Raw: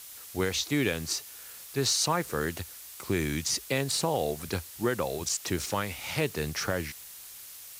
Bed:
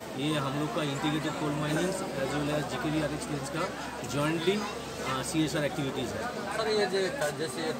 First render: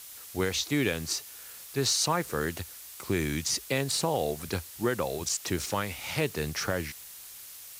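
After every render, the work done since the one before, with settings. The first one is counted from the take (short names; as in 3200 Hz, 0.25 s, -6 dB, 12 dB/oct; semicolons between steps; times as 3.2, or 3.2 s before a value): nothing audible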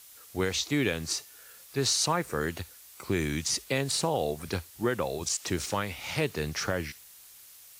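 noise print and reduce 6 dB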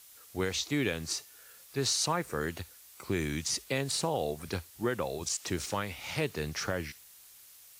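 gain -3 dB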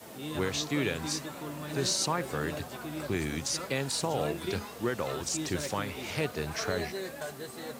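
add bed -8.5 dB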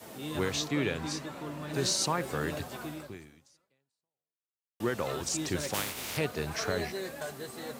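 0.68–1.74 LPF 4000 Hz 6 dB/oct; 2.88–4.8 fade out exponential; 5.73–6.16 spectral contrast lowered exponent 0.35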